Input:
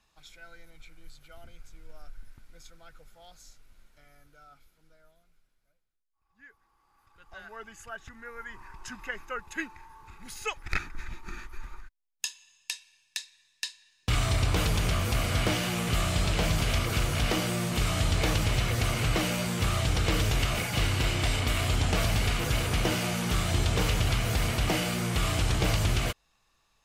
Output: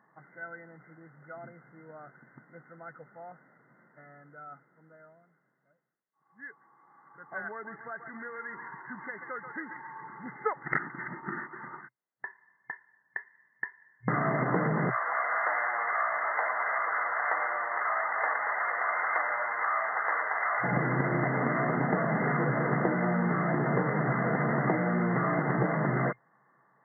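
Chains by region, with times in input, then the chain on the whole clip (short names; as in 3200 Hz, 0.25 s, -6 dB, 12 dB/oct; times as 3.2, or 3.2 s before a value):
7.51–10.24 compressor 3:1, threshold -47 dBFS + thinning echo 0.135 s, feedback 64%, high-pass 720 Hz, level -6 dB
14.9–20.64 HPF 790 Hz 24 dB/oct + lo-fi delay 0.114 s, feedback 55%, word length 8-bit, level -12 dB
whole clip: FFT band-pass 120–2100 Hz; compressor 6:1, threshold -33 dBFS; gain +9 dB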